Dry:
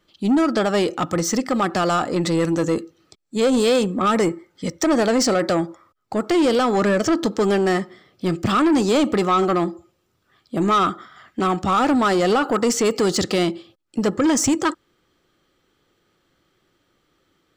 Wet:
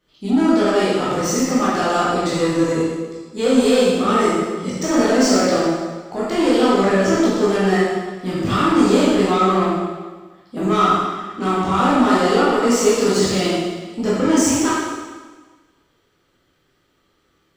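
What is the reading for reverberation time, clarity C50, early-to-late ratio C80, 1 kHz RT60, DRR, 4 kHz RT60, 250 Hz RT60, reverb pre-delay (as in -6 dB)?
1.4 s, -2.5 dB, 0.5 dB, 1.4 s, -9.5 dB, 1.3 s, 1.4 s, 8 ms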